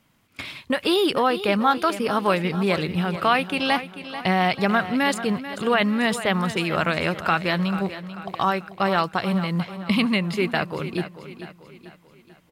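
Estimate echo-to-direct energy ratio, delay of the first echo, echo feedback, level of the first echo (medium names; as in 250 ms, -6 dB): -11.5 dB, 440 ms, 46%, -12.5 dB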